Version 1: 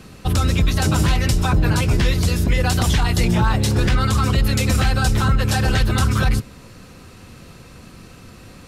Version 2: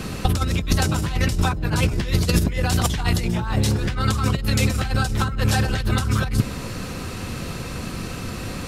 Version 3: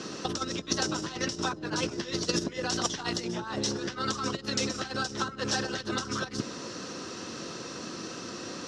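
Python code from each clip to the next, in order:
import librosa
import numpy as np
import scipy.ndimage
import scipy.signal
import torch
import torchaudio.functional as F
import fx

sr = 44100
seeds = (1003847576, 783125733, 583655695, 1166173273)

y1 = fx.over_compress(x, sr, threshold_db=-22.0, ratio=-0.5)
y1 = y1 * librosa.db_to_amplitude(4.0)
y2 = fx.cabinet(y1, sr, low_hz=280.0, low_slope=12, high_hz=6800.0, hz=(330.0, 780.0, 2300.0, 5700.0), db=(5, -4, -9, 9))
y2 = y2 * librosa.db_to_amplitude(-5.0)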